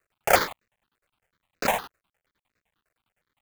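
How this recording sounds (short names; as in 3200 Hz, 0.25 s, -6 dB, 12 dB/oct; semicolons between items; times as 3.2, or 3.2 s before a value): aliases and images of a low sample rate 5600 Hz, jitter 20%; tremolo saw down 9.8 Hz, depth 60%; a quantiser's noise floor 12-bit, dither none; notches that jump at a steady rate 8.4 Hz 890–3200 Hz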